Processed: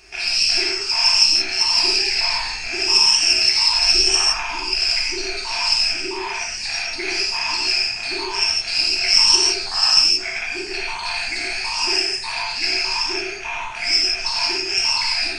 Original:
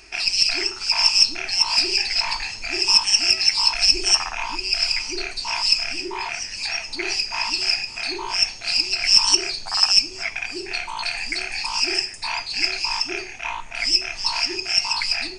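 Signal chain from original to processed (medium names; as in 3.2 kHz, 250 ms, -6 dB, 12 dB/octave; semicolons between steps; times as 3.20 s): gated-style reverb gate 200 ms flat, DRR -5 dB; trim -3.5 dB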